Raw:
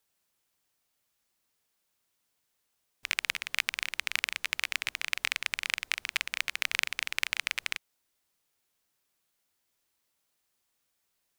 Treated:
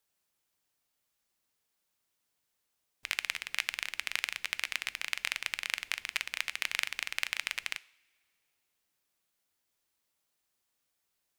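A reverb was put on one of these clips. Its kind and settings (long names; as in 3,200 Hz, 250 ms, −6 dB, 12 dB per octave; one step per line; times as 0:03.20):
coupled-rooms reverb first 0.55 s, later 2.5 s, from −20 dB, DRR 16.5 dB
level −3 dB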